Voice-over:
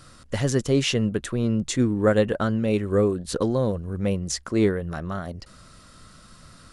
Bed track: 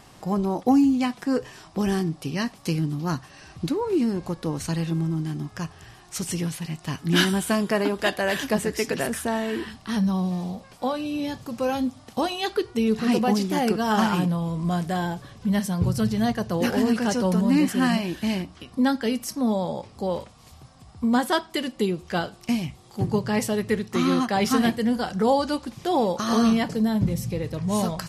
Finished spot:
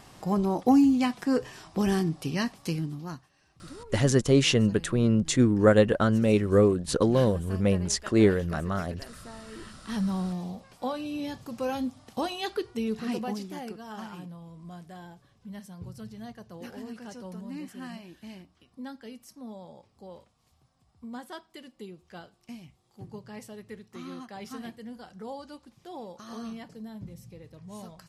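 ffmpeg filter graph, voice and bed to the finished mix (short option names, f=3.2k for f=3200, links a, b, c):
-filter_complex "[0:a]adelay=3600,volume=0.5dB[a];[1:a]volume=13dB,afade=t=out:st=2.36:d=0.94:silence=0.11885,afade=t=in:st=9.47:d=0.55:silence=0.188365,afade=t=out:st=12.43:d=1.38:silence=0.211349[b];[a][b]amix=inputs=2:normalize=0"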